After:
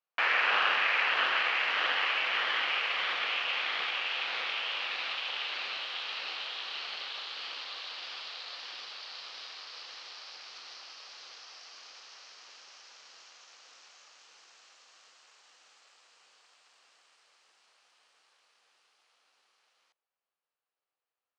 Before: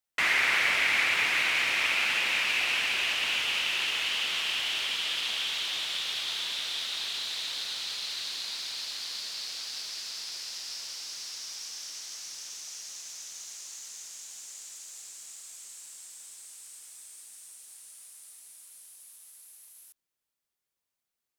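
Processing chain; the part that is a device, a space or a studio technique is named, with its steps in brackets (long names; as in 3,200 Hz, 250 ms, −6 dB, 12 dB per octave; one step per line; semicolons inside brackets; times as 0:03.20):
voice changer toy (ring modulator whose carrier an LFO sweeps 420 Hz, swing 50%, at 1.6 Hz; loudspeaker in its box 430–4,000 Hz, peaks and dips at 500 Hz +5 dB, 770 Hz +4 dB, 1,200 Hz +5 dB, 2,100 Hz −3 dB, 3,600 Hz −6 dB)
level +2 dB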